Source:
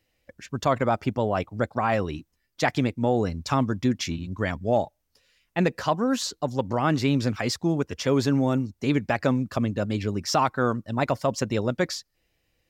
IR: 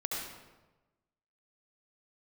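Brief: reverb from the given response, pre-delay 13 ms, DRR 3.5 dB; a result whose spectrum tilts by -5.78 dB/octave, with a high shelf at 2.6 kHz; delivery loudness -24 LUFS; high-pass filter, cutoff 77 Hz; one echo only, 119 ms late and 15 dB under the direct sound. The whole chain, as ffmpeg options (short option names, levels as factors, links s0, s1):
-filter_complex "[0:a]highpass=77,highshelf=f=2600:g=-4,aecho=1:1:119:0.178,asplit=2[s0][s1];[1:a]atrim=start_sample=2205,adelay=13[s2];[s1][s2]afir=irnorm=-1:irlink=0,volume=0.422[s3];[s0][s3]amix=inputs=2:normalize=0,volume=1.06"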